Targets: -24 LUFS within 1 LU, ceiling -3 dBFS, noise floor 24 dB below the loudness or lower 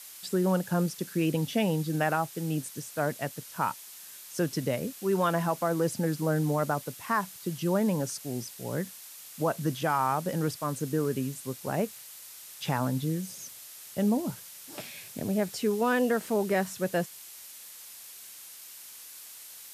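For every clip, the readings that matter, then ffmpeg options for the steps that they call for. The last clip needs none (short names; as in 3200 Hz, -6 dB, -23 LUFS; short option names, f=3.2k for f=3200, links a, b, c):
noise floor -47 dBFS; noise floor target -54 dBFS; loudness -30.0 LUFS; peak -14.0 dBFS; loudness target -24.0 LUFS
-> -af "afftdn=nr=7:nf=-47"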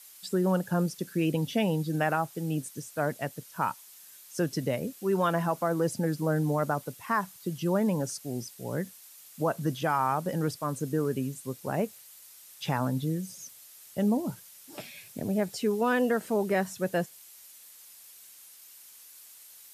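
noise floor -52 dBFS; noise floor target -54 dBFS
-> -af "afftdn=nr=6:nf=-52"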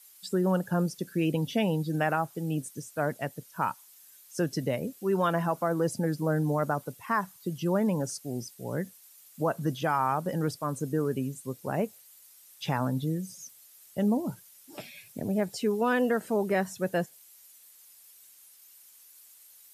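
noise floor -56 dBFS; loudness -30.0 LUFS; peak -14.5 dBFS; loudness target -24.0 LUFS
-> -af "volume=6dB"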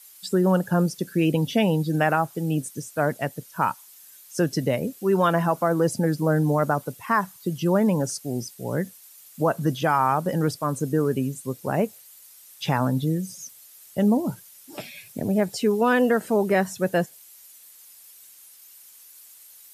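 loudness -24.0 LUFS; peak -8.5 dBFS; noise floor -50 dBFS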